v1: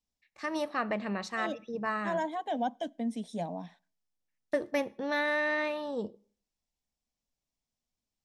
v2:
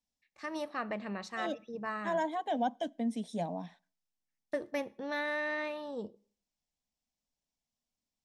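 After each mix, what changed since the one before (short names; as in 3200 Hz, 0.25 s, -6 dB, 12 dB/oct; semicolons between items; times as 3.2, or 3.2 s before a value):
first voice -5.0 dB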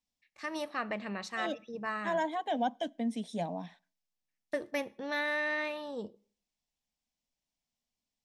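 first voice: add high shelf 7700 Hz +7.5 dB; master: add bell 2600 Hz +4 dB 1.6 oct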